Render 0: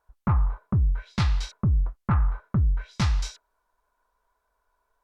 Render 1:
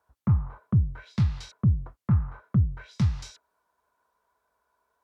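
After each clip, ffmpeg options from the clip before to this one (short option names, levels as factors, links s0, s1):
-filter_complex "[0:a]highpass=f=78:w=0.5412,highpass=f=78:w=1.3066,lowshelf=f=360:g=3.5,acrossover=split=260[s0][s1];[s1]acompressor=threshold=0.00891:ratio=6[s2];[s0][s2]amix=inputs=2:normalize=0"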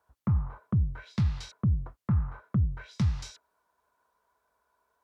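-af "alimiter=limit=0.112:level=0:latency=1:release=13"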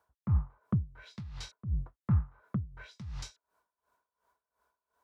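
-af "aeval=exprs='val(0)*pow(10,-19*(0.5-0.5*cos(2*PI*2.8*n/s))/20)':c=same"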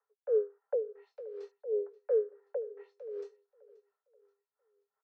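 -af "afreqshift=360,bandpass=f=250:t=q:w=1.8:csg=0,aecho=1:1:530|1060|1590:0.075|0.036|0.0173,volume=2.11"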